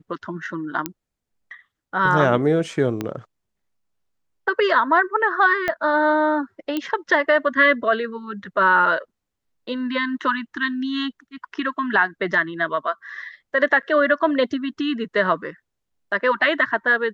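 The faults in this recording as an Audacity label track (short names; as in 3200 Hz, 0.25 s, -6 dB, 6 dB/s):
0.860000	0.860000	pop -8 dBFS
3.010000	3.010000	pop -12 dBFS
5.680000	5.680000	pop -10 dBFS
6.770000	6.770000	pop -12 dBFS
13.820000	13.830000	gap 9 ms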